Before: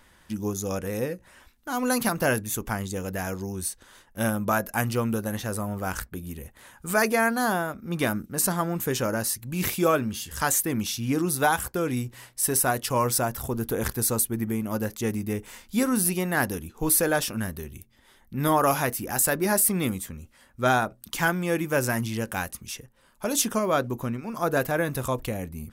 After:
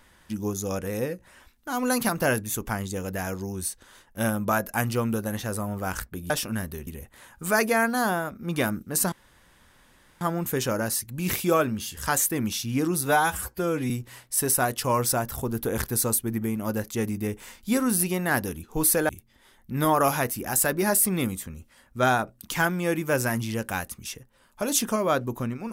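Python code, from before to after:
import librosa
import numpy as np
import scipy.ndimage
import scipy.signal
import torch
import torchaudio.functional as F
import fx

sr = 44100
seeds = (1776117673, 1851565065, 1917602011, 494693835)

y = fx.edit(x, sr, fx.insert_room_tone(at_s=8.55, length_s=1.09),
    fx.stretch_span(start_s=11.4, length_s=0.56, factor=1.5),
    fx.move(start_s=17.15, length_s=0.57, to_s=6.3), tone=tone)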